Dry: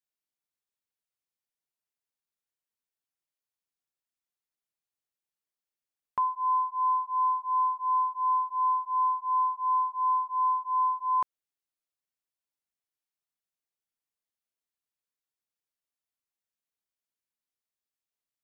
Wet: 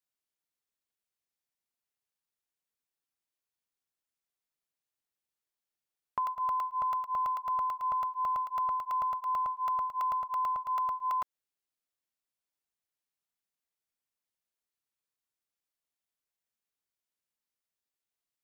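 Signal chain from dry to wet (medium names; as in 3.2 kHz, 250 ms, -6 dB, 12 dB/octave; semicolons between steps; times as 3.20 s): compression, threshold -29 dBFS, peak gain reduction 6 dB; crackling interface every 0.11 s, samples 64, zero, from 0.77 s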